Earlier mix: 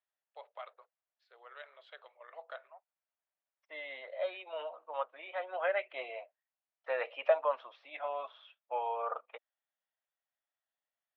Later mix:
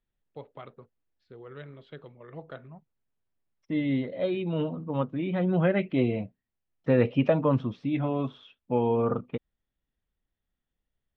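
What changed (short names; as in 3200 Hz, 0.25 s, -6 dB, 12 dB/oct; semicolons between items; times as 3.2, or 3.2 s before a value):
second voice: remove air absorption 210 m; master: remove elliptic high-pass 610 Hz, stop band 70 dB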